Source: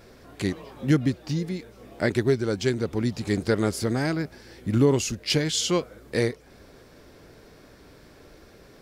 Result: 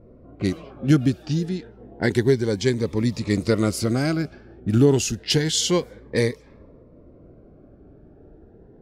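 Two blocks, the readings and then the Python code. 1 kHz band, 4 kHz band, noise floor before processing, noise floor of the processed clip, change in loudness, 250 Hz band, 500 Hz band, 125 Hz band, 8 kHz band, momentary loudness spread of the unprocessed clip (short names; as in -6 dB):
+0.5 dB, +3.0 dB, -52 dBFS, -50 dBFS, +3.5 dB, +3.5 dB, +3.0 dB, +4.0 dB, +4.0 dB, 9 LU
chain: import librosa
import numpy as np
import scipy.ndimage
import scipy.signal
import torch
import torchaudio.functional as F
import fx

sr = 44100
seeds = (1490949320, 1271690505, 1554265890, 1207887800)

y = fx.env_lowpass(x, sr, base_hz=490.0, full_db=-23.0)
y = fx.notch_cascade(y, sr, direction='rising', hz=0.29)
y = y * librosa.db_to_amplitude(4.0)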